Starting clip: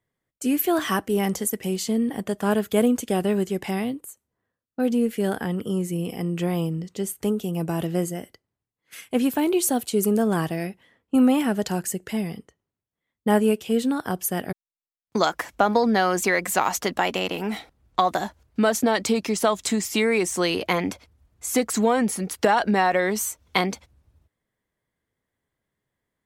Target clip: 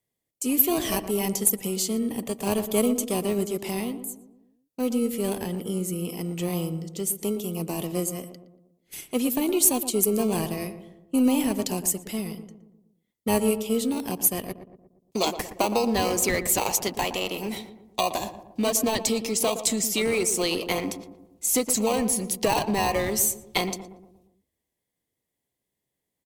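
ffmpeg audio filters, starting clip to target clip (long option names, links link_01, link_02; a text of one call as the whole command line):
ffmpeg -i in.wav -filter_complex "[0:a]aemphasis=mode=production:type=cd,aeval=exprs='0.668*(cos(1*acos(clip(val(0)/0.668,-1,1)))-cos(1*PI/2))+0.0266*(cos(4*acos(clip(val(0)/0.668,-1,1)))-cos(4*PI/2))':channel_layout=same,lowshelf=frequency=97:gain=-11.5,acrossover=split=670|1900[link_01][link_02][link_03];[link_02]acrusher=samples=25:mix=1:aa=0.000001[link_04];[link_01][link_04][link_03]amix=inputs=3:normalize=0,asplit=2[link_05][link_06];[link_06]adelay=117,lowpass=frequency=1100:poles=1,volume=-9.5dB,asplit=2[link_07][link_08];[link_08]adelay=117,lowpass=frequency=1100:poles=1,volume=0.53,asplit=2[link_09][link_10];[link_10]adelay=117,lowpass=frequency=1100:poles=1,volume=0.53,asplit=2[link_11][link_12];[link_12]adelay=117,lowpass=frequency=1100:poles=1,volume=0.53,asplit=2[link_13][link_14];[link_14]adelay=117,lowpass=frequency=1100:poles=1,volume=0.53,asplit=2[link_15][link_16];[link_16]adelay=117,lowpass=frequency=1100:poles=1,volume=0.53[link_17];[link_05][link_07][link_09][link_11][link_13][link_15][link_17]amix=inputs=7:normalize=0,volume=-2dB" out.wav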